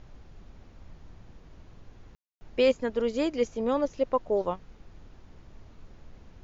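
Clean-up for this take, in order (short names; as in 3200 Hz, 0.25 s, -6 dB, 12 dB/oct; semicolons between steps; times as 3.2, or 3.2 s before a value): room tone fill 2.15–2.41; noise print and reduce 21 dB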